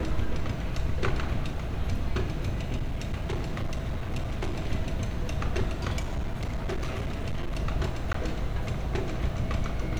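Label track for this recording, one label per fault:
2.750000	4.560000	clipping −25.5 dBFS
5.990000	7.600000	clipping −26 dBFS
8.130000	8.140000	drop-out 14 ms

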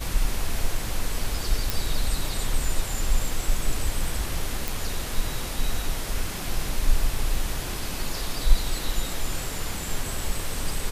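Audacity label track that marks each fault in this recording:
1.700000	1.700000	click
4.680000	4.680000	click

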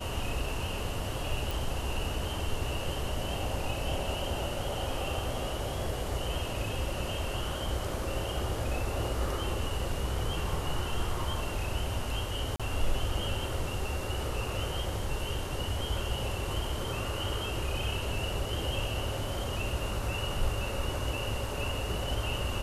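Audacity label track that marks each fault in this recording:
1.510000	1.510000	click
12.560000	12.600000	drop-out 36 ms

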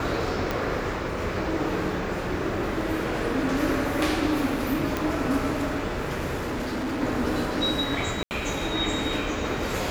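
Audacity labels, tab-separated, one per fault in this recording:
0.510000	0.510000	click −12 dBFS
4.970000	4.970000	click
6.380000	7.020000	clipping −26 dBFS
8.230000	8.310000	drop-out 79 ms

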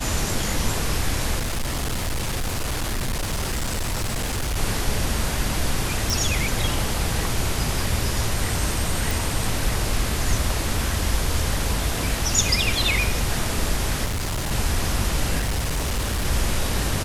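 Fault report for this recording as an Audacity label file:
1.380000	4.580000	clipping −21.5 dBFS
6.100000	6.100000	click
9.110000	9.110000	click
14.040000	14.520000	clipping −22.5 dBFS
15.380000	16.260000	clipping −20 dBFS

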